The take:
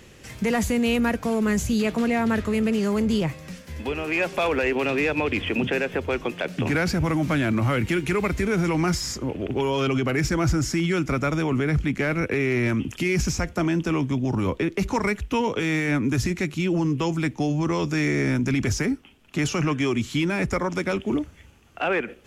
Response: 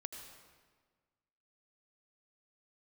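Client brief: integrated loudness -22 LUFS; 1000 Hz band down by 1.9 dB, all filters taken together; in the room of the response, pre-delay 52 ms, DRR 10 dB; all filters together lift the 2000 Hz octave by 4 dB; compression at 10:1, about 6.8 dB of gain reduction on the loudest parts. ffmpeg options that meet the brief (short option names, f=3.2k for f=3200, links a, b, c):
-filter_complex "[0:a]equalizer=f=1k:t=o:g=-4.5,equalizer=f=2k:t=o:g=6,acompressor=threshold=-25dB:ratio=10,asplit=2[a][b];[1:a]atrim=start_sample=2205,adelay=52[c];[b][c]afir=irnorm=-1:irlink=0,volume=-7dB[d];[a][d]amix=inputs=2:normalize=0,volume=6.5dB"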